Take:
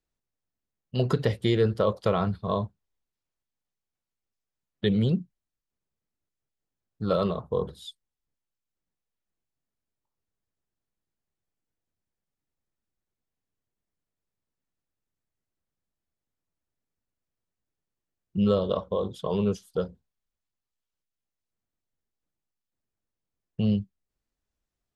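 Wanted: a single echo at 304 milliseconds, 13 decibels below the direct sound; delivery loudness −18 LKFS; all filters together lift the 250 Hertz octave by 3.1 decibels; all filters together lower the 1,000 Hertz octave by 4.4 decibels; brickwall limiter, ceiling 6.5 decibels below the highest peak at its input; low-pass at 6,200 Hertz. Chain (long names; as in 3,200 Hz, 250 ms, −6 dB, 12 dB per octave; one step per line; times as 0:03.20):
low-pass filter 6,200 Hz
parametric band 250 Hz +4.5 dB
parametric band 1,000 Hz −6 dB
brickwall limiter −15 dBFS
single-tap delay 304 ms −13 dB
level +10 dB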